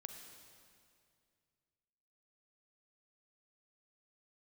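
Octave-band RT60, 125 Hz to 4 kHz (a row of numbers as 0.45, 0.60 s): 2.9, 2.5, 2.4, 2.2, 2.2, 2.1 s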